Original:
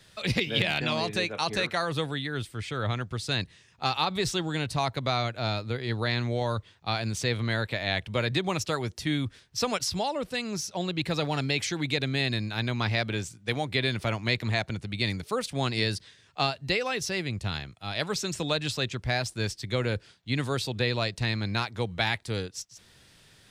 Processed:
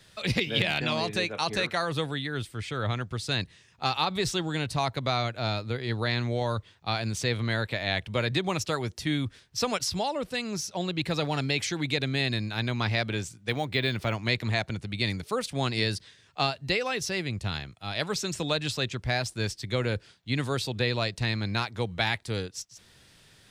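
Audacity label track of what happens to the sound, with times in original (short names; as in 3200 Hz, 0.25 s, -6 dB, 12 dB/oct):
13.490000	14.150000	decimation joined by straight lines rate divided by 2×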